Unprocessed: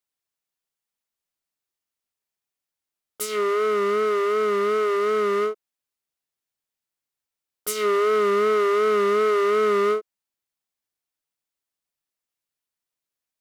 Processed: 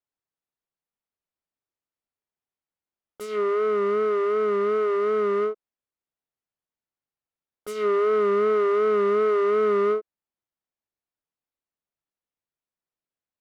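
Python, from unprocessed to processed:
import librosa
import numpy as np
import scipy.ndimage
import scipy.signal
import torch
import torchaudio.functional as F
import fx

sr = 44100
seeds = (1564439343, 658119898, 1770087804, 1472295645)

y = fx.lowpass(x, sr, hz=1100.0, slope=6)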